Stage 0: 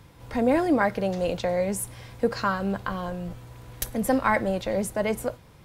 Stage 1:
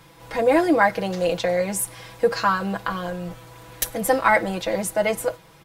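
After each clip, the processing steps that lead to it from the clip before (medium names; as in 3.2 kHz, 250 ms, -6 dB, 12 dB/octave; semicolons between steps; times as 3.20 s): bass shelf 280 Hz -10.5 dB; comb 6.1 ms, depth 79%; trim +4.5 dB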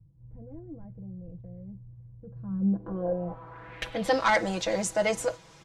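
saturation -11.5 dBFS, distortion -16 dB; low-pass sweep 100 Hz -> 6.7 kHz, 2.28–4.29 s; trim -3.5 dB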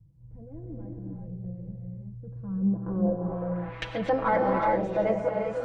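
gated-style reverb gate 420 ms rising, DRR 0 dB; low-pass that closes with the level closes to 1.1 kHz, closed at -23.5 dBFS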